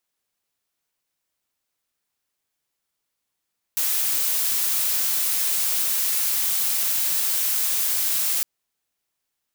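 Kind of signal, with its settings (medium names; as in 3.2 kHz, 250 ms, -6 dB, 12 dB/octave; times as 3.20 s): noise blue, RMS -22.5 dBFS 4.66 s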